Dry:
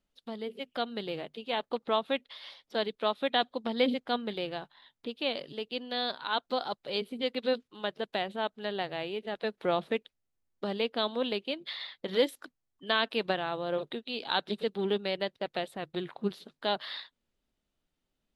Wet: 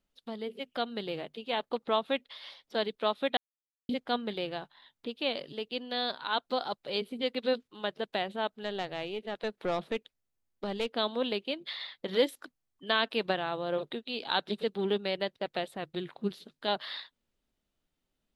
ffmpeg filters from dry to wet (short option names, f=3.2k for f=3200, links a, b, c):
-filter_complex "[0:a]asettb=1/sr,asplit=3[a][b][c];[a]atrim=end=8.634[d];[b]atrim=start=8.63:end=10.9,asetpts=PTS-STARTPTS,afade=t=in:d=0.004:c=qsin,afade=t=out:st=2.266:d=0.004:c=qsin,aeval=exprs='(tanh(15.8*val(0)+0.35)-tanh(0.35))/15.8':c=same[e];[c]atrim=start=10.896[f];[d][e]acrossfade=d=0.004:c1=hsin:c2=qsin[g];[g][f]acrossfade=d=0.004:c1=qsin:c2=hsin,asettb=1/sr,asplit=3[h][i][j];[h]atrim=end=15.924[k];[i]atrim=start=15.92:end=16.68,asetpts=PTS-STARTPTS,afade=t=in:d=0.004:c=qsin,afade=t=out:st=0.756:d=0.004:c=qsin,equalizer=f=910:t=o:w=1.7:g=-5[l];[j]atrim=start=16.676[m];[k][l]acrossfade=d=0.004:c1=hsin:c2=qsin[n];[n][m]acrossfade=d=0.004:c1=qsin:c2=hsin,asplit=3[o][p][q];[o]atrim=end=3.37,asetpts=PTS-STARTPTS,afade=t=out:st=3.366:d=0.004:c=hsin[r];[p]atrim=start=3.37:end=3.89,asetpts=PTS-STARTPTS,volume=0[s];[q]atrim=start=3.89,asetpts=PTS-STARTPTS,afade=t=in:d=0.004:c=hsin[t];[r][s][t]concat=n=3:v=0:a=1"